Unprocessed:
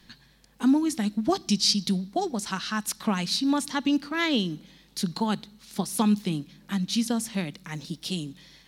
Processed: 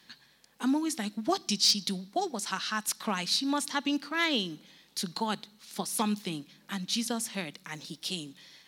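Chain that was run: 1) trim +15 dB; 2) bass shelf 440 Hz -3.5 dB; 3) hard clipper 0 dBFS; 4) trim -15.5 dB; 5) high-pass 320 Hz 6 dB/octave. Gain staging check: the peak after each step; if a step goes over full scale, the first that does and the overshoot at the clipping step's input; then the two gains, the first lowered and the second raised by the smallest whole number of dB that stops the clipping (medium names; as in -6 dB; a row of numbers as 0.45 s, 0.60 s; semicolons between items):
+4.5 dBFS, +4.5 dBFS, 0.0 dBFS, -15.5 dBFS, -14.0 dBFS; step 1, 4.5 dB; step 1 +10 dB, step 4 -10.5 dB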